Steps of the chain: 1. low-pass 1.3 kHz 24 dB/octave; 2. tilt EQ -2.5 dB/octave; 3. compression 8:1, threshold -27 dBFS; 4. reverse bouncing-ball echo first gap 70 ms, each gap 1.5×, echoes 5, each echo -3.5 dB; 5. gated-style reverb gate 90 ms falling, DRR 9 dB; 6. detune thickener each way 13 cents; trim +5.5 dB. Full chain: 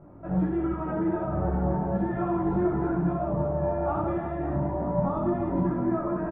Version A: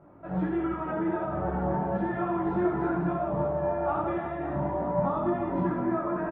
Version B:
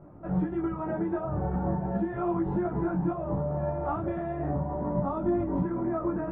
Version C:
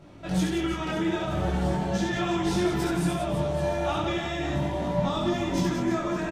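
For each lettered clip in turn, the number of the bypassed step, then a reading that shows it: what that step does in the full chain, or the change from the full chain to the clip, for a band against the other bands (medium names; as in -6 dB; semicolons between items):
2, 2 kHz band +5.5 dB; 4, loudness change -2.5 LU; 1, 2 kHz band +10.5 dB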